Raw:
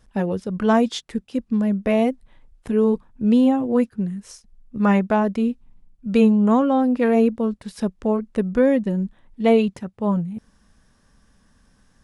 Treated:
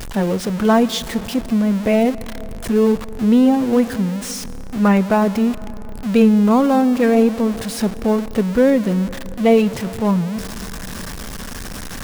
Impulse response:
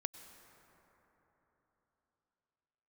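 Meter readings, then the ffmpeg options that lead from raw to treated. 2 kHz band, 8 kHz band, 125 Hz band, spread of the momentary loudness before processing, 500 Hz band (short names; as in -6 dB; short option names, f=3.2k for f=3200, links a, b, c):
+4.5 dB, n/a, +4.5 dB, 11 LU, +3.5 dB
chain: -filter_complex "[0:a]aeval=exprs='val(0)+0.5*0.0501*sgn(val(0))':c=same,asplit=2[a][b];[1:a]atrim=start_sample=2205[c];[b][c]afir=irnorm=-1:irlink=0,volume=-2dB[d];[a][d]amix=inputs=2:normalize=0,volume=-2dB"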